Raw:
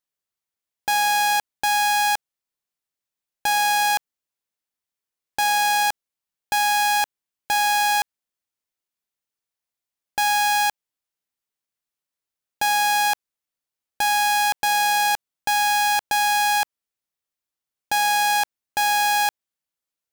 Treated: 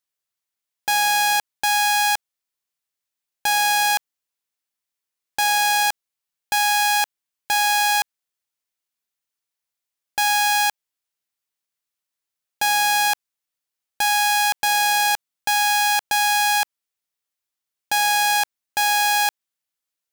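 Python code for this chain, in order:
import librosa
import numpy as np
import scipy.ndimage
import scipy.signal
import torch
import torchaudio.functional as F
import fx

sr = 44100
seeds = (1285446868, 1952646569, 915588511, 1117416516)

y = fx.tilt_shelf(x, sr, db=-3.0, hz=910.0)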